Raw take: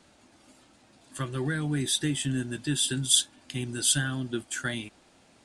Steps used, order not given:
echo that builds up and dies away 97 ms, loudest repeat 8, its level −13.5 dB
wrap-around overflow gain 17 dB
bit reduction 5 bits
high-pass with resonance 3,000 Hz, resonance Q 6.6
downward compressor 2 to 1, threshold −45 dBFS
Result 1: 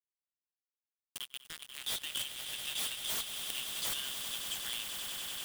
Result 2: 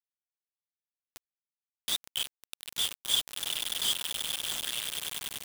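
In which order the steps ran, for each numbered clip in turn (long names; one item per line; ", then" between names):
high-pass with resonance, then bit reduction, then wrap-around overflow, then echo that builds up and dies away, then downward compressor
echo that builds up and dies away, then downward compressor, then wrap-around overflow, then high-pass with resonance, then bit reduction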